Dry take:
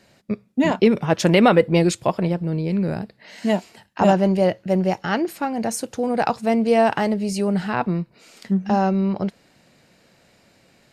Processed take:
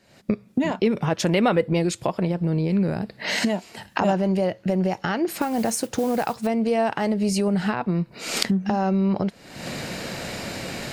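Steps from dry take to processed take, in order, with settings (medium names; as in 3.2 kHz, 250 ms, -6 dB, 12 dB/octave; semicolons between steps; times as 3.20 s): recorder AGC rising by 61 dB/s; 5.35–6.47 s: modulation noise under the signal 21 dB; trim -5.5 dB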